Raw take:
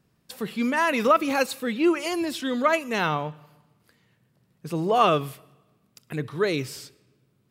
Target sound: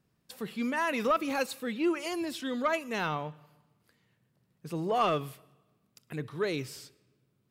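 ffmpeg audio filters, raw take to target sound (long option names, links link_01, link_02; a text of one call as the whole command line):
ffmpeg -i in.wav -af "asoftclip=type=tanh:threshold=-10.5dB,volume=-6.5dB" out.wav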